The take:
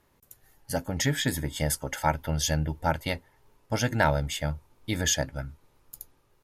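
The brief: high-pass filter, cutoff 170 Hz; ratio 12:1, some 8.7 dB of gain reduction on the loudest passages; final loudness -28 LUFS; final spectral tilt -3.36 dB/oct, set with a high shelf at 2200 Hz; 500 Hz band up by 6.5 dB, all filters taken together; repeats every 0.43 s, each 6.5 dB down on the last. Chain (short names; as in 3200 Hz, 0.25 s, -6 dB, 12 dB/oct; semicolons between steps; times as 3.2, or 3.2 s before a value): HPF 170 Hz; bell 500 Hz +7.5 dB; high shelf 2200 Hz +6.5 dB; compressor 12:1, threshold -23 dBFS; feedback echo 0.43 s, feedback 47%, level -6.5 dB; gain +1 dB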